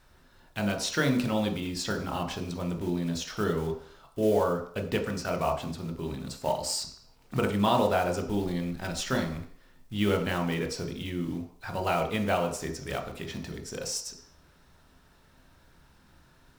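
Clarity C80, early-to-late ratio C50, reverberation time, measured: 11.5 dB, 9.0 dB, 0.55 s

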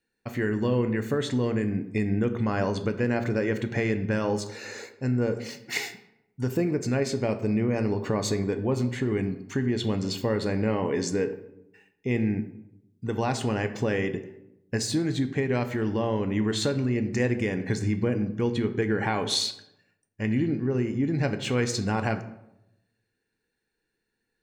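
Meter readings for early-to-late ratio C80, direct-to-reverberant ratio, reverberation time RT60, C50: 15.0 dB, 8.0 dB, 0.85 s, 13.0 dB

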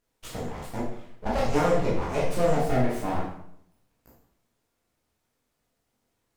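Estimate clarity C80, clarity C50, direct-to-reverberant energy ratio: 6.5 dB, 2.0 dB, -6.0 dB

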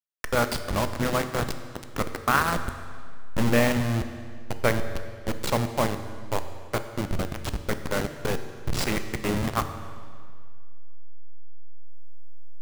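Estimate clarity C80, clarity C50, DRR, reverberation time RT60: 11.0 dB, 10.0 dB, 8.5 dB, 2.0 s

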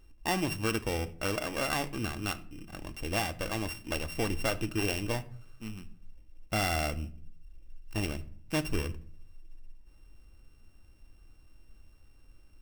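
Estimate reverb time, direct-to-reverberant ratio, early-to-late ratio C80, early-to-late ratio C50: 0.50 s, 9.5 dB, 22.5 dB, 18.0 dB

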